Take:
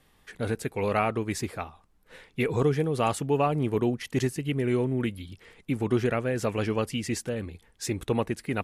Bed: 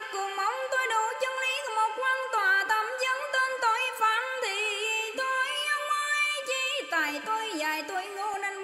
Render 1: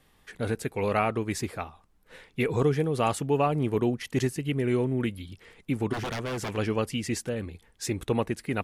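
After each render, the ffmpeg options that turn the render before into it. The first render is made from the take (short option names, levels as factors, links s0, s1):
-filter_complex "[0:a]asplit=3[s0][s1][s2];[s0]afade=t=out:st=5.92:d=0.02[s3];[s1]aeval=exprs='0.0473*(abs(mod(val(0)/0.0473+3,4)-2)-1)':c=same,afade=t=in:st=5.92:d=0.02,afade=t=out:st=6.56:d=0.02[s4];[s2]afade=t=in:st=6.56:d=0.02[s5];[s3][s4][s5]amix=inputs=3:normalize=0"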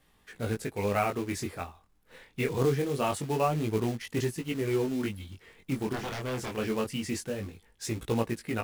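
-af "acrusher=bits=4:mode=log:mix=0:aa=0.000001,flanger=delay=17.5:depth=6.1:speed=0.24"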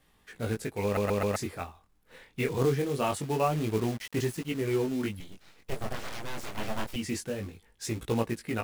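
-filter_complex "[0:a]asettb=1/sr,asplit=3[s0][s1][s2];[s0]atrim=end=3.464[s3];[s1]atrim=start=3.46:end=4.45,asetpts=PTS-STARTPTS,afade=t=in:d=0.004:c=qsin,afade=t=out:st=0.986:d=0.004:c=qsin,acrusher=bits=6:mix=0:aa=0.5[s4];[s2]atrim=start=4.446[s5];[s3][s4]acrossfade=d=0.004:c1=hsin:c2=qsin[s6];[s6][s5]acrossfade=d=0.004:c1=qsin:c2=hsin,asettb=1/sr,asplit=3[s7][s8][s9];[s7]atrim=end=5.204[s10];[s8]atrim=start=5.2:end=6.96,asetpts=PTS-STARTPTS,afade=t=in:d=0.004:c=qsin,afade=t=out:st=1.756:d=0.004:c=qsin,aeval=exprs='abs(val(0))':c=same[s11];[s9]atrim=start=6.956[s12];[s10][s11]acrossfade=d=0.004:c1=hsin:c2=qsin[s13];[s13][s12]acrossfade=d=0.004:c1=qsin:c2=hsin,asplit=5[s14][s15][s16][s17][s18];[s14]atrim=end=0.972[s19];[s15]atrim=start=0.838:end=0.972[s20];[s16]atrim=start=0.838:end=0.972[s21];[s17]atrim=start=0.838:end=0.972[s22];[s18]atrim=start=1.358[s23];[s19][s20]acrossfade=d=0.004:c1=hsin:c2=hsin[s24];[s24][s21]acrossfade=d=0.004:c1=hsin:c2=hsin[s25];[s25][s22]acrossfade=d=0.004:c1=hsin:c2=hsin[s26];[s26][s23]acrossfade=d=0.004:c1=hsin:c2=hsin"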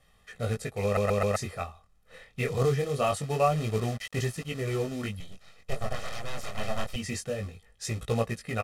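-af "lowpass=11000,aecho=1:1:1.6:0.69"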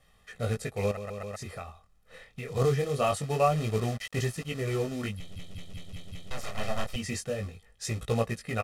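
-filter_complex "[0:a]asettb=1/sr,asplit=3[s0][s1][s2];[s0]atrim=end=0.914[s3];[s1]atrim=start=0.91:end=2.56,asetpts=PTS-STARTPTS,afade=t=in:d=0.004:c=qsin,afade=t=out:st=1.646:d=0.004:c=qsin,acompressor=threshold=0.02:ratio=8:attack=3.2:release=140:knee=1:detection=peak[s4];[s2]atrim=start=2.556[s5];[s3][s4]acrossfade=d=0.004:c1=hsin:c2=qsin[s6];[s6][s5]acrossfade=d=0.004:c1=qsin:c2=hsin,asplit=7[s7][s8][s9][s10][s11][s12][s13];[s7]atrim=end=5.362[s14];[s8]atrim=start=5.168:end=5.362[s15];[s9]atrim=start=5.168:end=5.362[s16];[s10]atrim=start=5.168:end=5.362[s17];[s11]atrim=start=5.168:end=5.362[s18];[s12]atrim=start=5.168:end=5.362[s19];[s13]atrim=start=6.308[s20];[s14][s15]acrossfade=d=0.004:c1=hsin:c2=hsin[s21];[s21][s16]acrossfade=d=0.004:c1=hsin:c2=hsin[s22];[s22][s17]acrossfade=d=0.004:c1=hsin:c2=hsin[s23];[s23][s18]acrossfade=d=0.004:c1=hsin:c2=hsin[s24];[s24][s19]acrossfade=d=0.004:c1=hsin:c2=hsin[s25];[s25][s20]acrossfade=d=0.004:c1=hsin:c2=hsin"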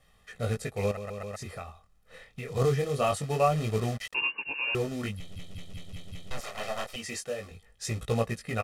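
-filter_complex "[0:a]asettb=1/sr,asplit=3[s0][s1][s2];[s0]atrim=end=4.144[s3];[s1]atrim=start=4.14:end=4.75,asetpts=PTS-STARTPTS,afade=t=in:d=0.004:c=qsin,afade=t=out:st=0.606:d=0.004:c=qsin,lowpass=f=2500:t=q:w=0.5098,lowpass=f=2500:t=q:w=0.6013,lowpass=f=2500:t=q:w=0.9,lowpass=f=2500:t=q:w=2.563,afreqshift=-2900[s4];[s2]atrim=start=4.746[s5];[s3][s4]acrossfade=d=0.004:c1=hsin:c2=qsin[s6];[s6][s5]acrossfade=d=0.004:c1=qsin:c2=hsin,asettb=1/sr,asplit=3[s7][s8][s9];[s7]atrim=end=6.404[s10];[s8]atrim=start=6.4:end=7.51,asetpts=PTS-STARTPTS,afade=t=in:d=0.004:c=qsin,afade=t=out:st=1.106:d=0.004:c=qsin,bass=f=250:g=-13,treble=f=4000:g=0[s11];[s9]atrim=start=7.506[s12];[s10][s11]acrossfade=d=0.004:c1=hsin:c2=qsin[s13];[s13][s12]acrossfade=d=0.004:c1=qsin:c2=hsin"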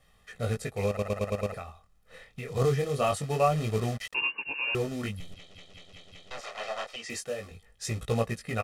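-filter_complex "[0:a]asettb=1/sr,asplit=3[s0][s1][s2];[s0]atrim=end=5.344[s3];[s1]atrim=start=5.34:end=7.1,asetpts=PTS-STARTPTS,afade=t=in:d=0.004:c=qsin,afade=t=out:st=1.756:d=0.004:c=qsin,acrossover=split=350 7300:gain=0.2 1 0.112[s4][s5][s6];[s4][s5][s6]amix=inputs=3:normalize=0[s7];[s2]atrim=start=7.096[s8];[s3][s7]acrossfade=d=0.004:c1=hsin:c2=qsin[s9];[s9][s8]acrossfade=d=0.004:c1=qsin:c2=hsin,asplit=7[s10][s11][s12][s13][s14][s15][s16];[s10]atrim=end=0.992[s17];[s11]atrim=start=0.878:end=0.992[s18];[s12]atrim=start=0.878:end=0.992[s19];[s13]atrim=start=0.878:end=0.992[s20];[s14]atrim=start=0.878:end=0.992[s21];[s15]atrim=start=0.878:end=0.992[s22];[s16]atrim=start=1.538[s23];[s17][s18]acrossfade=d=0.004:c1=hsin:c2=hsin[s24];[s24][s19]acrossfade=d=0.004:c1=hsin:c2=hsin[s25];[s25][s20]acrossfade=d=0.004:c1=hsin:c2=hsin[s26];[s26][s21]acrossfade=d=0.004:c1=hsin:c2=hsin[s27];[s27][s22]acrossfade=d=0.004:c1=hsin:c2=hsin[s28];[s28][s23]acrossfade=d=0.004:c1=hsin:c2=hsin"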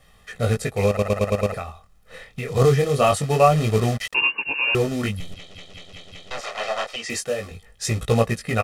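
-af "volume=2.82"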